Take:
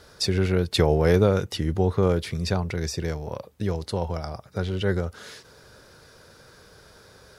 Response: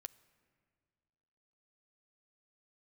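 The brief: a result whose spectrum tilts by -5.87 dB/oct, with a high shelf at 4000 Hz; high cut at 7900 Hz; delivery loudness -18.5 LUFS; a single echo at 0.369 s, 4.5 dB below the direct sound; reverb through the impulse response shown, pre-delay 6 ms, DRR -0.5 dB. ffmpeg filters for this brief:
-filter_complex "[0:a]lowpass=7.9k,highshelf=f=4k:g=-3.5,aecho=1:1:369:0.596,asplit=2[a][b];[1:a]atrim=start_sample=2205,adelay=6[c];[b][c]afir=irnorm=-1:irlink=0,volume=6dB[d];[a][d]amix=inputs=2:normalize=0,volume=3dB"

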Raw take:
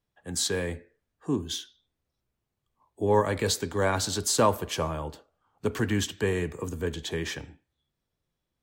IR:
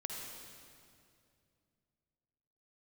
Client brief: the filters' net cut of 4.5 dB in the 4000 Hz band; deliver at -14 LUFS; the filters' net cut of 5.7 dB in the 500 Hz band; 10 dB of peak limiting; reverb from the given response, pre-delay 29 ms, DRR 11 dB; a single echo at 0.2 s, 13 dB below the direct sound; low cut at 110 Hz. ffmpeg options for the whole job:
-filter_complex "[0:a]highpass=110,equalizer=f=500:t=o:g=-7,equalizer=f=4k:t=o:g=-5.5,alimiter=limit=-22.5dB:level=0:latency=1,aecho=1:1:200:0.224,asplit=2[a][b];[1:a]atrim=start_sample=2205,adelay=29[c];[b][c]afir=irnorm=-1:irlink=0,volume=-11dB[d];[a][d]amix=inputs=2:normalize=0,volume=20dB"

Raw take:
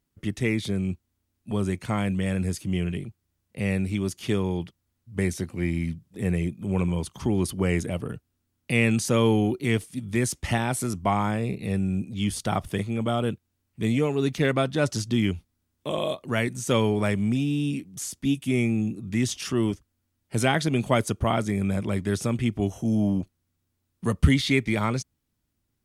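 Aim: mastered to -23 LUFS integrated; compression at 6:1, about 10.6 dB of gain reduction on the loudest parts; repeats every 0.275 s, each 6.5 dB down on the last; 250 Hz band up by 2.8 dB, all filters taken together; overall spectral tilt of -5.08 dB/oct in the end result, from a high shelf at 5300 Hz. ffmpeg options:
-af "equalizer=f=250:t=o:g=3.5,highshelf=f=5.3k:g=8,acompressor=threshold=-23dB:ratio=6,aecho=1:1:275|550|825|1100|1375|1650:0.473|0.222|0.105|0.0491|0.0231|0.0109,volume=5.5dB"

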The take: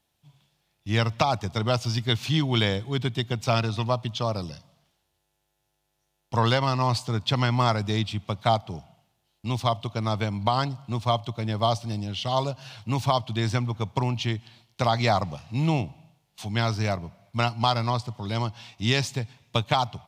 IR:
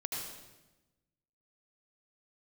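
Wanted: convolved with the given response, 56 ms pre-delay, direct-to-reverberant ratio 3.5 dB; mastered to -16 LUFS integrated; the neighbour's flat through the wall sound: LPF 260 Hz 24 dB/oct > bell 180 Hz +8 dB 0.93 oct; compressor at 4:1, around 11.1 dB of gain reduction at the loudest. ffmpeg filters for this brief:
-filter_complex "[0:a]acompressor=threshold=-31dB:ratio=4,asplit=2[a][b];[1:a]atrim=start_sample=2205,adelay=56[c];[b][c]afir=irnorm=-1:irlink=0,volume=-6dB[d];[a][d]amix=inputs=2:normalize=0,lowpass=f=260:w=0.5412,lowpass=f=260:w=1.3066,equalizer=f=180:t=o:w=0.93:g=8,volume=16.5dB"

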